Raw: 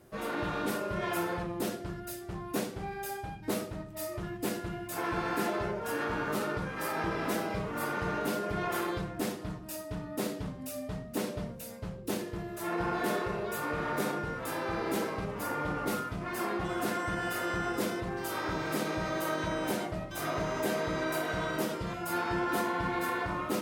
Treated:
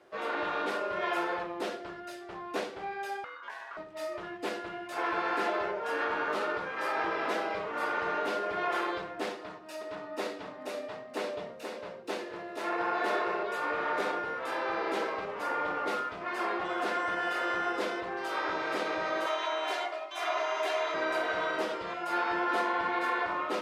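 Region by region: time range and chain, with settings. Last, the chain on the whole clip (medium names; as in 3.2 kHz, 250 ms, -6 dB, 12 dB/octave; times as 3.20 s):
3.24–3.77 s: ring modulator 1.3 kHz + compression 5:1, threshold -42 dBFS
9.33–13.43 s: high-pass 140 Hz 6 dB/octave + band-stop 3.2 kHz, Q 25 + delay 479 ms -5.5 dB
19.26–20.94 s: high-pass 690 Hz + comb 2.9 ms, depth 89%
whole clip: low-pass 9.7 kHz 12 dB/octave; three-band isolator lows -23 dB, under 360 Hz, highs -15 dB, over 4.6 kHz; trim +3.5 dB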